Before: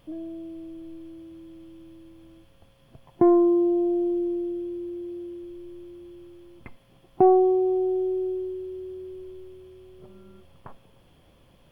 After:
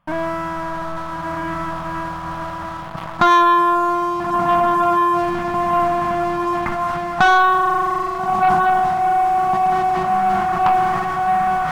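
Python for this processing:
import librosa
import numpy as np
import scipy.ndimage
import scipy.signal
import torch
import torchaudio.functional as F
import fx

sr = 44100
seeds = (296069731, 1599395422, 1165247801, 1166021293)

p1 = x + fx.echo_diffused(x, sr, ms=1340, feedback_pct=57, wet_db=-4.5, dry=0)
p2 = fx.leveller(p1, sr, passes=3)
p3 = fx.curve_eq(p2, sr, hz=(120.0, 180.0, 390.0, 640.0, 1200.0, 3600.0), db=(0, 10, -18, 4, 14, -5))
p4 = fx.rider(p3, sr, range_db=5, speed_s=2.0)
p5 = fx.bass_treble(p4, sr, bass_db=-2, treble_db=-3)
p6 = fx.leveller(p5, sr, passes=2)
p7 = fx.sustainer(p6, sr, db_per_s=23.0)
y = p7 * 10.0 ** (-5.5 / 20.0)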